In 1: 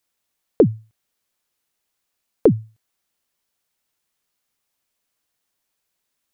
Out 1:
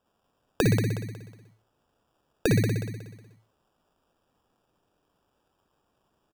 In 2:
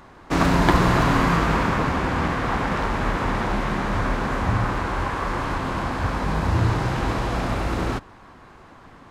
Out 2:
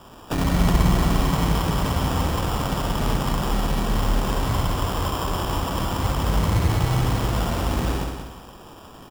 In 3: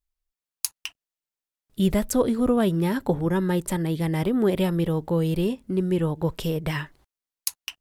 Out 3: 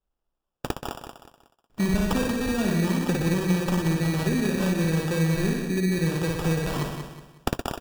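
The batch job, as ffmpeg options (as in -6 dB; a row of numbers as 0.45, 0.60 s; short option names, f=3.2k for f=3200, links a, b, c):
-filter_complex "[0:a]asplit=2[a][b];[b]aecho=0:1:55.39|119.5:0.794|0.398[c];[a][c]amix=inputs=2:normalize=0,acrossover=split=170|3000[d][e][f];[e]acompressor=threshold=-26dB:ratio=6[g];[d][g][f]amix=inputs=3:normalize=0,acrusher=samples=21:mix=1:aa=0.000001,asplit=2[h][i];[i]aecho=0:1:183|366|549|732:0.447|0.156|0.0547|0.0192[j];[h][j]amix=inputs=2:normalize=0"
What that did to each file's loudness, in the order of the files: -7.0, -0.5, -0.5 LU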